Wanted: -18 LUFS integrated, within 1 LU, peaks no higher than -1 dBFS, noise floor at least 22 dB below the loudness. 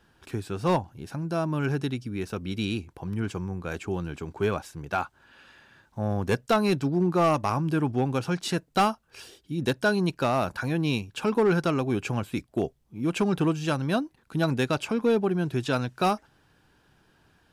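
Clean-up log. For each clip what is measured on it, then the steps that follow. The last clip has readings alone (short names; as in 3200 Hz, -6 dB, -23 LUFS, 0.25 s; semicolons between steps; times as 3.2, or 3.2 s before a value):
clipped 0.4%; flat tops at -16.0 dBFS; loudness -27.5 LUFS; peak -16.0 dBFS; loudness target -18.0 LUFS
-> clip repair -16 dBFS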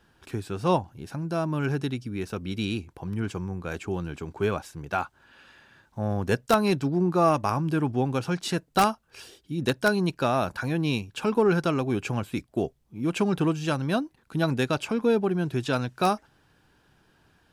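clipped 0.0%; loudness -27.0 LUFS; peak -7.0 dBFS; loudness target -18.0 LUFS
-> gain +9 dB; limiter -1 dBFS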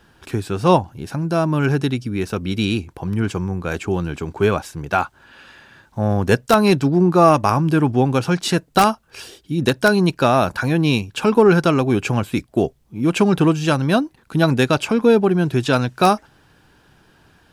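loudness -18.5 LUFS; peak -1.0 dBFS; noise floor -55 dBFS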